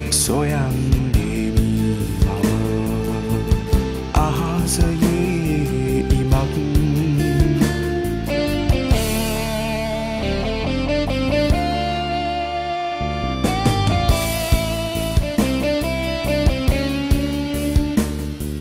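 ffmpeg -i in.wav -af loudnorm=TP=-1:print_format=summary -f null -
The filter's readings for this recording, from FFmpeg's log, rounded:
Input Integrated:    -20.0 LUFS
Input True Peak:      -4.7 dBTP
Input LRA:             1.9 LU
Input Threshold:     -30.0 LUFS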